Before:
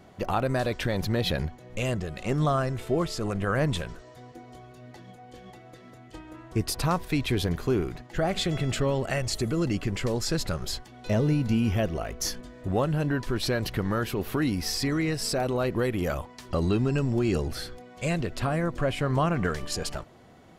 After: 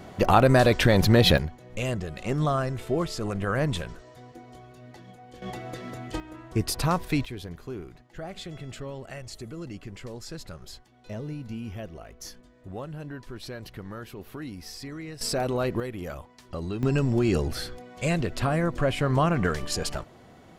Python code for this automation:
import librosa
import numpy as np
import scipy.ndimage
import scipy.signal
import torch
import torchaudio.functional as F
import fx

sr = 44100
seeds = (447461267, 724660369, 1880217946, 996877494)

y = fx.gain(x, sr, db=fx.steps((0.0, 8.5), (1.38, -0.5), (5.42, 11.0), (6.2, 1.0), (7.25, -11.5), (15.21, 0.0), (15.8, -7.5), (16.83, 2.0)))